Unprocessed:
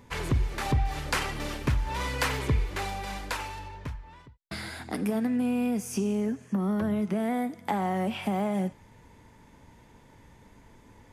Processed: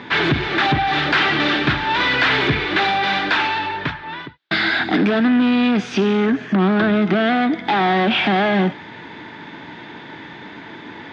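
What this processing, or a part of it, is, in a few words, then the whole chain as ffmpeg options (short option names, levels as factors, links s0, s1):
overdrive pedal into a guitar cabinet: -filter_complex "[0:a]asplit=2[s0][s1];[s1]highpass=f=720:p=1,volume=20,asoftclip=type=tanh:threshold=0.188[s2];[s0][s2]amix=inputs=2:normalize=0,lowpass=f=2900:p=1,volume=0.501,highpass=110,equalizer=f=160:t=q:w=4:g=5,equalizer=f=320:t=q:w=4:g=8,equalizer=f=520:t=q:w=4:g=-8,equalizer=f=1000:t=q:w=4:g=-5,equalizer=f=1600:t=q:w=4:g=5,equalizer=f=3600:t=q:w=4:g=7,lowpass=f=4300:w=0.5412,lowpass=f=4300:w=1.3066,volume=1.88"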